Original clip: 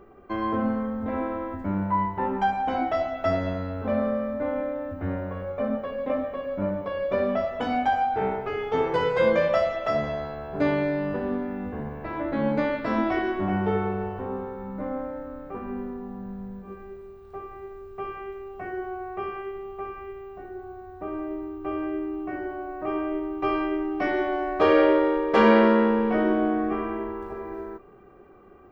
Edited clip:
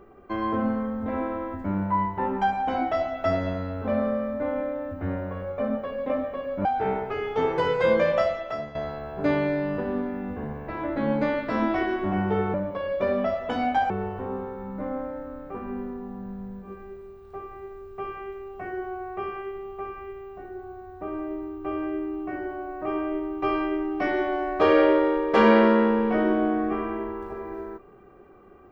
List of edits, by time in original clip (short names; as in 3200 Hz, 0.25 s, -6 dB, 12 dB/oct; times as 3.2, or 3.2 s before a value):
6.65–8.01 move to 13.9
9.55–10.11 fade out, to -14 dB